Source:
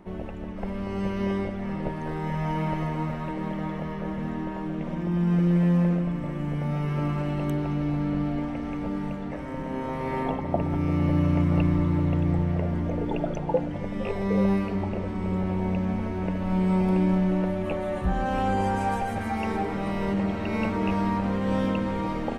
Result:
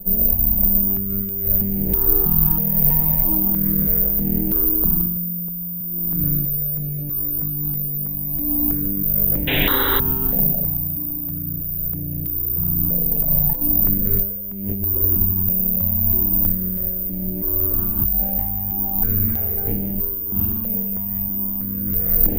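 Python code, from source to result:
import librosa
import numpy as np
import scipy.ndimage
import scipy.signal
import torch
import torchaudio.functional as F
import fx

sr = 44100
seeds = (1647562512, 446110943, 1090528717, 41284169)

p1 = fx.lower_of_two(x, sr, delay_ms=0.31)
p2 = 10.0 ** (-22.5 / 20.0) * np.tanh(p1 / 10.0 ** (-22.5 / 20.0))
p3 = p1 + (p2 * librosa.db_to_amplitude(-5.0))
p4 = fx.air_absorb(p3, sr, metres=65.0)
p5 = fx.room_early_taps(p4, sr, ms=(21, 41), db=(-14.5, -3.5))
p6 = fx.over_compress(p5, sr, threshold_db=-26.0, ratio=-1.0)
p7 = fx.tilt_eq(p6, sr, slope=-3.5)
p8 = (np.kron(p7[::3], np.eye(3)[0]) * 3)[:len(p7)]
p9 = fx.spec_paint(p8, sr, seeds[0], shape='noise', start_s=9.47, length_s=0.53, low_hz=240.0, high_hz=4000.0, level_db=-11.0)
p10 = fx.phaser_held(p9, sr, hz=3.1, low_hz=320.0, high_hz=4300.0)
y = p10 * librosa.db_to_amplitude(-7.5)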